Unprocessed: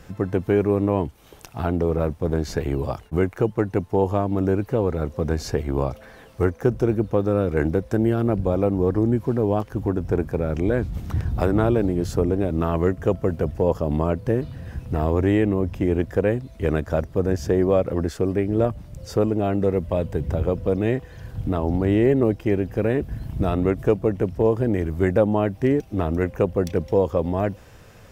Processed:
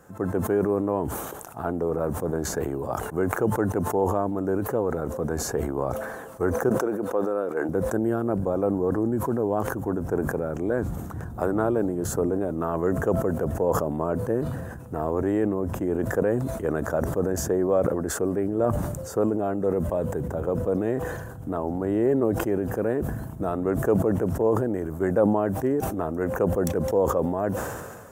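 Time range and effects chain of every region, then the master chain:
0:06.69–0:07.69: high-pass filter 140 Hz + bass and treble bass −13 dB, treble −3 dB
whole clip: high-pass filter 320 Hz 6 dB per octave; flat-topped bell 3,300 Hz −14.5 dB; level that may fall only so fast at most 36 dB per second; level −1.5 dB

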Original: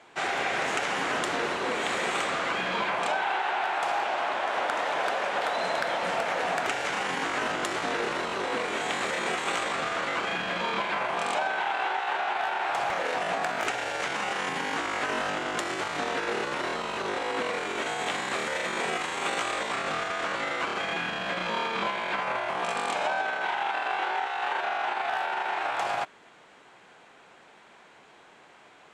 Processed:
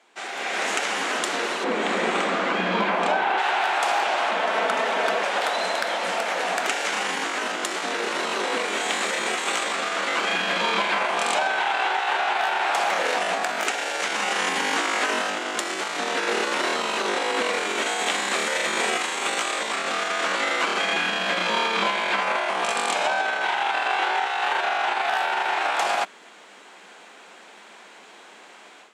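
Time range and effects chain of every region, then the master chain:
0:01.64–0:03.38: RIAA equalisation playback + hard clipping −15.5 dBFS
0:04.31–0:05.23: bass and treble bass +5 dB, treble −5 dB + frequency shifter −51 Hz + comb filter 4.5 ms, depth 45%
whole clip: elliptic high-pass filter 190 Hz, stop band 40 dB; high-shelf EQ 2,800 Hz +8.5 dB; automatic gain control gain up to 13 dB; level −7 dB

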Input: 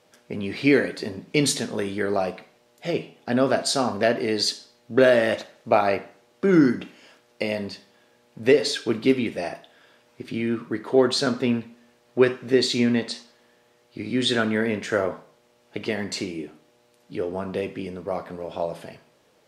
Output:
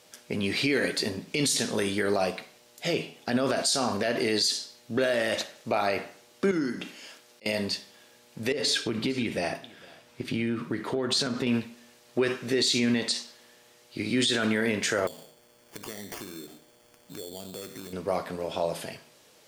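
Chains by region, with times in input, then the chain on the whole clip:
0:06.51–0:07.46: high-pass filter 130 Hz + volume swells 691 ms + downward compressor 2 to 1, threshold −35 dBFS
0:08.52–0:11.47: bass and treble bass +5 dB, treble −5 dB + downward compressor 12 to 1, threshold −24 dBFS + single-tap delay 454 ms −23.5 dB
0:15.07–0:17.93: flat-topped bell 1,300 Hz −10.5 dB 1.1 octaves + sample-rate reduction 3,900 Hz + downward compressor 3 to 1, threshold −42 dBFS
whole clip: high-shelf EQ 2,800 Hz +12 dB; brickwall limiter −16 dBFS

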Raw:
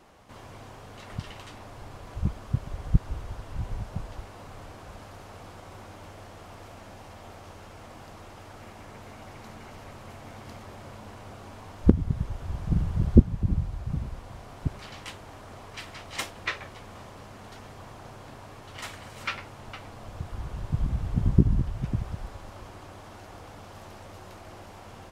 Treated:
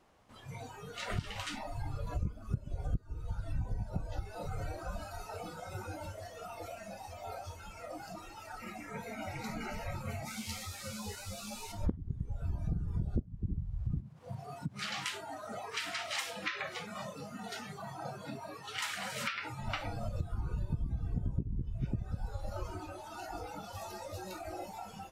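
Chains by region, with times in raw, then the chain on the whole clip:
0:10.25–0:11.72: high-shelf EQ 3,000 Hz +9.5 dB + string-ensemble chorus
0:14.00–0:19.52: downward compressor 4 to 1, threshold −38 dBFS + high-pass filter 94 Hz 24 dB per octave
whole clip: noise reduction from a noise print of the clip's start 19 dB; downward compressor 8 to 1, threshold −40 dBFS; level +8.5 dB

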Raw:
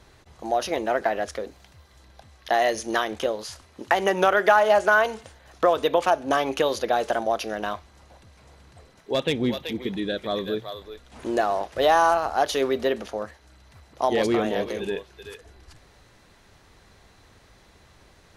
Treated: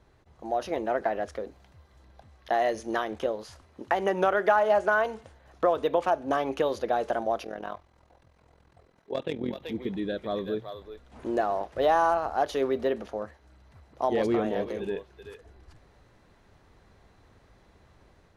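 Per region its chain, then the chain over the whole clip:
0:07.44–0:09.62: bass and treble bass −4 dB, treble −1 dB + amplitude modulation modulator 42 Hz, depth 65%
whole clip: high-shelf EQ 2,100 Hz −11 dB; automatic gain control gain up to 4 dB; level −6.5 dB

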